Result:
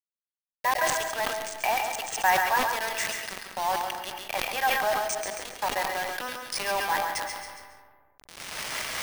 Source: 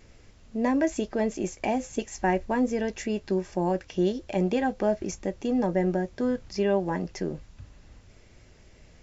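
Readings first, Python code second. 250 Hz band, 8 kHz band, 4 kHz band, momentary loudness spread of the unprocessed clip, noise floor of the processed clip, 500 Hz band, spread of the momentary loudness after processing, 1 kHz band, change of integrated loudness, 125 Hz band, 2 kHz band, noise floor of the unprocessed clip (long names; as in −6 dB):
−19.5 dB, can't be measured, +12.0 dB, 7 LU, below −85 dBFS, −5.5 dB, 11 LU, +7.0 dB, 0.0 dB, −16.0 dB, +10.0 dB, −55 dBFS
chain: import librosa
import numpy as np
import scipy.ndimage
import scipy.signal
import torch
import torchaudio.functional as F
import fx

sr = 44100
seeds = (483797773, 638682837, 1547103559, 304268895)

y = fx.block_float(x, sr, bits=7)
y = fx.recorder_agc(y, sr, target_db=-19.5, rise_db_per_s=18.0, max_gain_db=30)
y = scipy.signal.sosfilt(scipy.signal.butter(4, 800.0, 'highpass', fs=sr, output='sos'), y)
y = fx.dynamic_eq(y, sr, hz=1100.0, q=1.4, threshold_db=-45.0, ratio=4.0, max_db=3)
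y = fx.quant_dither(y, sr, seeds[0], bits=6, dither='none')
y = fx.echo_feedback(y, sr, ms=138, feedback_pct=27, wet_db=-7.5)
y = fx.rev_freeverb(y, sr, rt60_s=0.94, hf_ratio=0.5, predelay_ms=95, drr_db=10.0)
y = np.repeat(scipy.signal.resample_poly(y, 1, 3), 3)[:len(y)]
y = fx.sustainer(y, sr, db_per_s=37.0)
y = y * librosa.db_to_amplitude(5.0)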